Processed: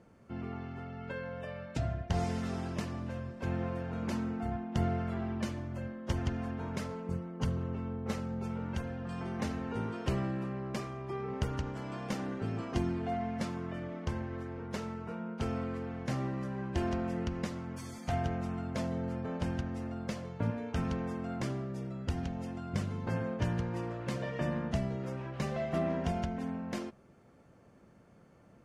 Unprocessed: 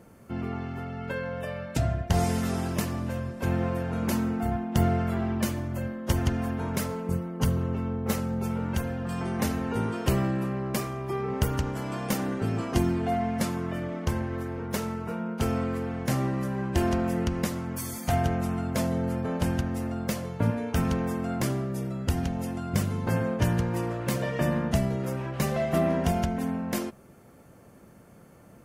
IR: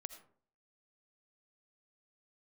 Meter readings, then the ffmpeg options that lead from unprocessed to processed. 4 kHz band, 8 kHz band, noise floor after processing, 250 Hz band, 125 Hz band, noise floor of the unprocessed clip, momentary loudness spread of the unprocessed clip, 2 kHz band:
-8.5 dB, -13.5 dB, -60 dBFS, -7.5 dB, -7.5 dB, -52 dBFS, 6 LU, -7.5 dB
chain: -af "lowpass=5.8k,volume=-7.5dB"

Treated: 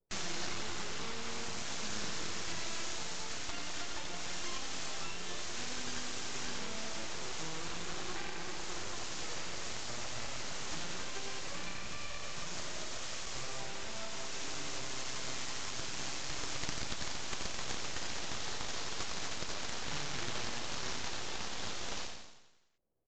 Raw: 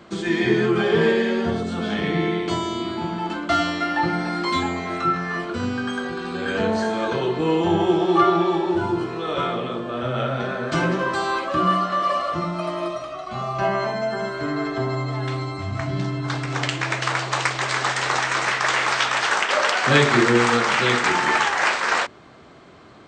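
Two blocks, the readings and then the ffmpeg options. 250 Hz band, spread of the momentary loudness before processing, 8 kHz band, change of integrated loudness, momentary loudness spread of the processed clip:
-25.0 dB, 9 LU, -4.5 dB, -18.0 dB, 3 LU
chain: -filter_complex "[0:a]aeval=exprs='(tanh(3.16*val(0)+0.15)-tanh(0.15))/3.16':c=same,acrossover=split=230[a][b];[b]acrusher=bits=5:mix=0:aa=0.000001[c];[a][c]amix=inputs=2:normalize=0,equalizer=f=5.4k:w=1.5:g=-6,acrossover=split=420[d][e];[e]acompressor=threshold=-27dB:ratio=6[f];[d][f]amix=inputs=2:normalize=0,aeval=exprs='0.447*(cos(1*acos(clip(val(0)/0.447,-1,1)))-cos(1*PI/2))+0.0631*(cos(3*acos(clip(val(0)/0.447,-1,1)))-cos(3*PI/2))+0.0224*(cos(6*acos(clip(val(0)/0.447,-1,1)))-cos(6*PI/2))':c=same,aderivative,asplit=2[g][h];[h]asplit=8[i][j][k][l][m][n][o][p];[i]adelay=89,afreqshift=35,volume=-4.5dB[q];[j]adelay=178,afreqshift=70,volume=-9.5dB[r];[k]adelay=267,afreqshift=105,volume=-14.6dB[s];[l]adelay=356,afreqshift=140,volume=-19.6dB[t];[m]adelay=445,afreqshift=175,volume=-24.6dB[u];[n]adelay=534,afreqshift=210,volume=-29.7dB[v];[o]adelay=623,afreqshift=245,volume=-34.7dB[w];[p]adelay=712,afreqshift=280,volume=-39.8dB[x];[q][r][s][t][u][v][w][x]amix=inputs=8:normalize=0[y];[g][y]amix=inputs=2:normalize=0,aeval=exprs='abs(val(0))':c=same,volume=8.5dB" -ar 16000 -c:a libvorbis -b:a 96k

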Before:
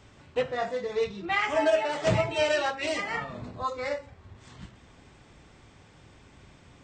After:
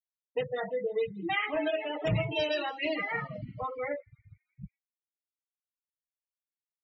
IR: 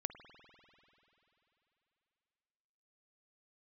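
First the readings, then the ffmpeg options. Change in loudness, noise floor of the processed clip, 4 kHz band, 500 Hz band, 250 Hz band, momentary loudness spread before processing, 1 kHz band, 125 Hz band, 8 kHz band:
-4.0 dB, under -85 dBFS, -3.0 dB, -4.5 dB, -1.0 dB, 10 LU, -6.0 dB, -1.0 dB, under -20 dB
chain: -filter_complex "[0:a]afftfilt=real='re*gte(hypot(re,im),0.0398)':imag='im*gte(hypot(re,im),0.0398)':win_size=1024:overlap=0.75,aecho=1:1:6.4:0.62,acrossover=split=140|400|2400[a][b][c][d];[b]alimiter=level_in=6dB:limit=-24dB:level=0:latency=1:release=176,volume=-6dB[e];[c]acompressor=threshold=-33dB:ratio=6[f];[d]asplit=6[g][h][i][j][k][l];[h]adelay=165,afreqshift=44,volume=-22.5dB[m];[i]adelay=330,afreqshift=88,volume=-26.5dB[n];[j]adelay=495,afreqshift=132,volume=-30.5dB[o];[k]adelay=660,afreqshift=176,volume=-34.5dB[p];[l]adelay=825,afreqshift=220,volume=-38.6dB[q];[g][m][n][o][p][q]amix=inputs=6:normalize=0[r];[a][e][f][r]amix=inputs=4:normalize=0"

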